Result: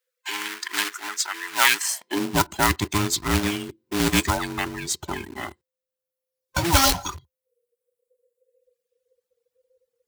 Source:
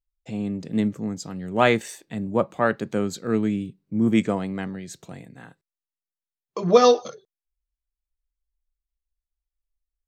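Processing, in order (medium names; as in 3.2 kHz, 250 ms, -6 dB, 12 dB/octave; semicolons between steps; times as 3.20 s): every band turned upside down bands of 500 Hz; reverb removal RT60 1.4 s; in parallel at -4 dB: companded quantiser 4-bit; on the sum: high-pass sweep 1.6 kHz -> 75 Hz, 1.76–2.47 s; spectrum-flattening compressor 2:1; trim -3 dB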